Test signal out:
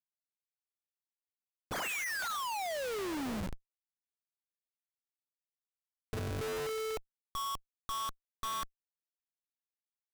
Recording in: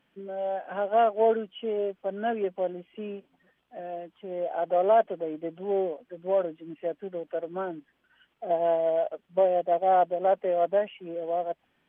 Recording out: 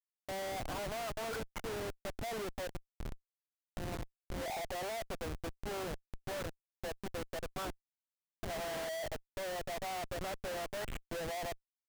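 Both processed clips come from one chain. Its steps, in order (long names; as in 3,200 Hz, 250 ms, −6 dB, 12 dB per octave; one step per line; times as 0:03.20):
variable-slope delta modulation 16 kbit/s
auto-filter band-pass saw up 0.45 Hz 800–1,900 Hz
comparator with hysteresis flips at −45 dBFS
level −1.5 dB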